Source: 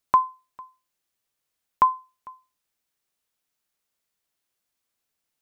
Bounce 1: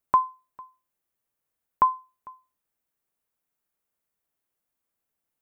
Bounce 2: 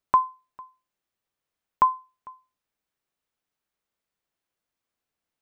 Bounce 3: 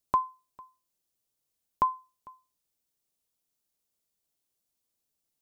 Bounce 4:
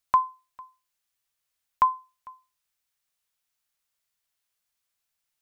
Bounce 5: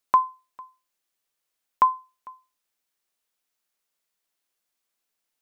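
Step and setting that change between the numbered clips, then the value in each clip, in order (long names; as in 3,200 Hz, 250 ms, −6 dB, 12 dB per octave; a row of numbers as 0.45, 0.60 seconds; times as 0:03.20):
parametric band, centre frequency: 4,500, 16,000, 1,700, 300, 86 Hertz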